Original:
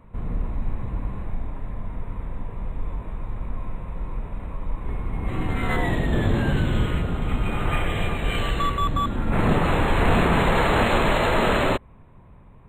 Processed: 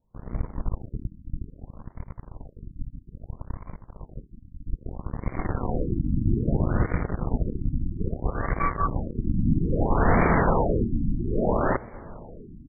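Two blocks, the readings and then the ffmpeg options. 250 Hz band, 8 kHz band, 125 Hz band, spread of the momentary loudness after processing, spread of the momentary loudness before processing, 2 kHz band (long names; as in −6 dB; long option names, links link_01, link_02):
−1.5 dB, below −35 dB, −2.0 dB, 21 LU, 15 LU, −8.0 dB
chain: -filter_complex "[0:a]aeval=exprs='0.316*(cos(1*acos(clip(val(0)/0.316,-1,1)))-cos(1*PI/2))+0.02*(cos(3*acos(clip(val(0)/0.316,-1,1)))-cos(3*PI/2))+0.0398*(cos(7*acos(clip(val(0)/0.316,-1,1)))-cos(7*PI/2))':channel_layout=same,asplit=2[link_01][link_02];[link_02]adelay=1015,lowpass=frequency=920:poles=1,volume=-20dB,asplit=2[link_03][link_04];[link_04]adelay=1015,lowpass=frequency=920:poles=1,volume=0.54,asplit=2[link_05][link_06];[link_06]adelay=1015,lowpass=frequency=920:poles=1,volume=0.54,asplit=2[link_07][link_08];[link_08]adelay=1015,lowpass=frequency=920:poles=1,volume=0.54[link_09];[link_01][link_03][link_05][link_07][link_09]amix=inputs=5:normalize=0,afftfilt=real='re*lt(b*sr/1024,300*pow(2400/300,0.5+0.5*sin(2*PI*0.61*pts/sr)))':imag='im*lt(b*sr/1024,300*pow(2400/300,0.5+0.5*sin(2*PI*0.61*pts/sr)))':win_size=1024:overlap=0.75"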